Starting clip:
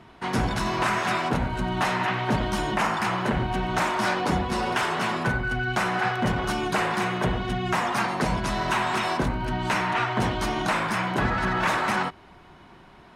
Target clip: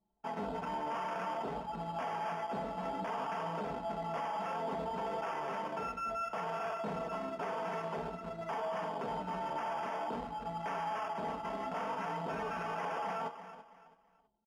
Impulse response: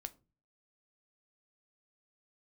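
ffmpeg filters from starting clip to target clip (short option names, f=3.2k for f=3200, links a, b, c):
-filter_complex "[0:a]asplit=2[a][b];[b]acompressor=threshold=-35dB:ratio=6,volume=-3dB[c];[a][c]amix=inputs=2:normalize=0,aecho=1:1:4.1:0.76[d];[1:a]atrim=start_sample=2205[e];[d][e]afir=irnorm=-1:irlink=0,aresample=16000,asoftclip=type=tanh:threshold=-17dB,aresample=44100,asetrate=40131,aresample=44100,anlmdn=63.1,aecho=1:1:329|658|987:0.178|0.0551|0.0171,acrusher=samples=11:mix=1:aa=0.000001,bandpass=f=650:t=q:w=0.88:csg=0,flanger=delay=6.1:depth=7.3:regen=69:speed=0.57:shape=sinusoidal,alimiter=level_in=6dB:limit=-24dB:level=0:latency=1:release=13,volume=-6dB"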